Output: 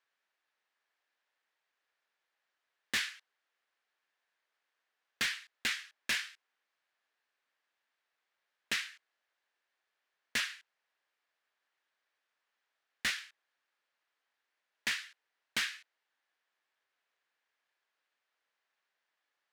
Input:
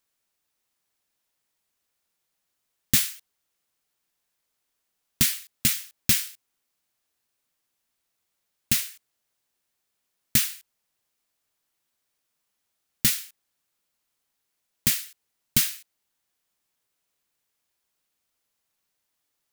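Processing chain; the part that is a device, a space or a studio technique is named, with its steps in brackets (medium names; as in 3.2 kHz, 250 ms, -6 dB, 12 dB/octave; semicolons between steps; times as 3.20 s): megaphone (band-pass 510–3200 Hz; peaking EQ 1.7 kHz +6.5 dB 0.44 oct; hard clipper -27 dBFS, distortion -10 dB)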